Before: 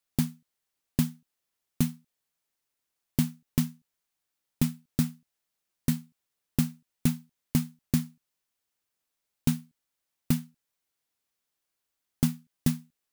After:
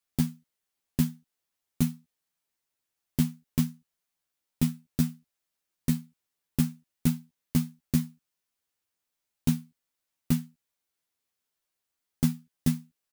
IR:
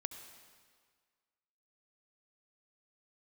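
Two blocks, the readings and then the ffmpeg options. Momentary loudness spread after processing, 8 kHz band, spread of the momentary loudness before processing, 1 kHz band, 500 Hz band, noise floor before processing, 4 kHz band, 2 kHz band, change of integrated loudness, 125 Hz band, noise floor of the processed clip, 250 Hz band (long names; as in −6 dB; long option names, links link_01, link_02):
5 LU, −1.0 dB, 4 LU, −1.0 dB, −1.5 dB, −84 dBFS, −1.5 dB, −1.5 dB, +0.5 dB, +0.5 dB, −85 dBFS, +1.0 dB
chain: -filter_complex "[0:a]asplit=2[link_01][link_02];[link_02]adelay=12,volume=-3dB[link_03];[link_01][link_03]amix=inputs=2:normalize=0,volume=-3dB"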